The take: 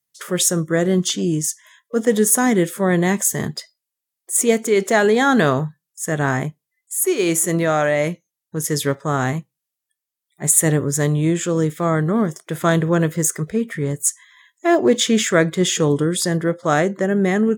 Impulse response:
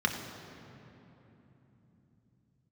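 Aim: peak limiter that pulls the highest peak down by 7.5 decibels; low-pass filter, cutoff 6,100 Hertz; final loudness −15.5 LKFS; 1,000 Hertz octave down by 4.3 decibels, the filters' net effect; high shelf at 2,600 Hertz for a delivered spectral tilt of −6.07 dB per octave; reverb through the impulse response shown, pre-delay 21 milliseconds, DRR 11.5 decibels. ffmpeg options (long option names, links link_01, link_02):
-filter_complex "[0:a]lowpass=6100,equalizer=frequency=1000:width_type=o:gain=-5,highshelf=frequency=2600:gain=-8.5,alimiter=limit=-12dB:level=0:latency=1,asplit=2[link_01][link_02];[1:a]atrim=start_sample=2205,adelay=21[link_03];[link_02][link_03]afir=irnorm=-1:irlink=0,volume=-21.5dB[link_04];[link_01][link_04]amix=inputs=2:normalize=0,volume=6.5dB"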